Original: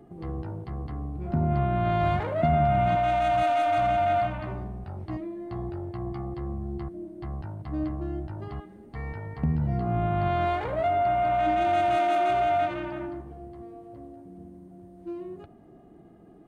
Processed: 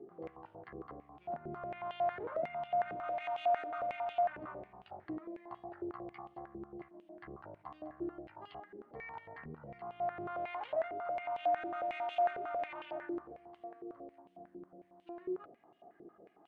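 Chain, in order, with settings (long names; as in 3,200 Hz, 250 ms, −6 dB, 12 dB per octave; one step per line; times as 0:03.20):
downward compressor 3 to 1, threshold −35 dBFS, peak gain reduction 12.5 dB
band-pass on a step sequencer 11 Hz 400–3,000 Hz
level +6 dB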